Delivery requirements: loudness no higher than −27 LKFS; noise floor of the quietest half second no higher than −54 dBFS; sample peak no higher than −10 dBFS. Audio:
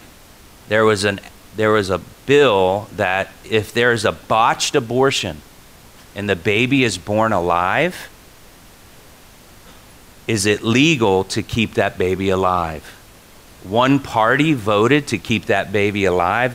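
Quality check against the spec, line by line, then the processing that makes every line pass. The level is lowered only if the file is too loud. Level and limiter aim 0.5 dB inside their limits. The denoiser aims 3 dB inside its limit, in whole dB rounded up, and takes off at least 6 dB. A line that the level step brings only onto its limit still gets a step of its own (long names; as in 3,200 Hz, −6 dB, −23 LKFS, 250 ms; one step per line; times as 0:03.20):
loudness −17.0 LKFS: out of spec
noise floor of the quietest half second −44 dBFS: out of spec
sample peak −3.0 dBFS: out of spec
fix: level −10.5 dB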